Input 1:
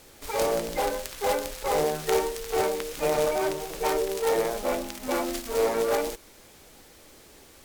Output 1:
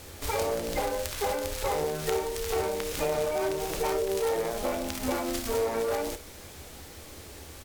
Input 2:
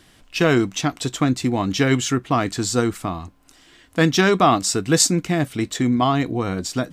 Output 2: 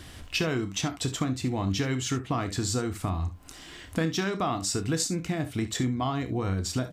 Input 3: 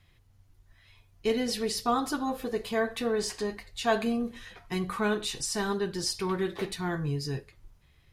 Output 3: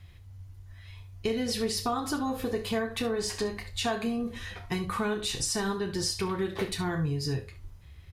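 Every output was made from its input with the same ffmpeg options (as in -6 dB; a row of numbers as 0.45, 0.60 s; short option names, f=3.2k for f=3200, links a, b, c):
-af "equalizer=f=81:t=o:w=0.7:g=13.5,acompressor=threshold=-32dB:ratio=6,aecho=1:1:31|62|72:0.266|0.158|0.158,volume=5dB"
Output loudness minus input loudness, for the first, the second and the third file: -2.5, -9.5, -0.5 LU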